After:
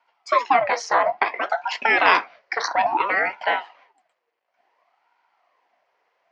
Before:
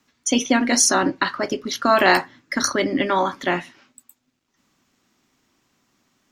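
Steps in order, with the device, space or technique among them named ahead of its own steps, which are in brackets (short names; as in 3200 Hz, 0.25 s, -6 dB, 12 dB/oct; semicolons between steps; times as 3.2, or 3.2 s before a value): 1.57–2.68 bell 4900 Hz +9 dB 0.98 oct; voice changer toy (ring modulator with a swept carrier 700 Hz, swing 70%, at 0.58 Hz; speaker cabinet 460–4100 Hz, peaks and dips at 710 Hz +10 dB, 1000 Hz +8 dB, 2000 Hz +6 dB, 3700 Hz -8 dB); gain -1 dB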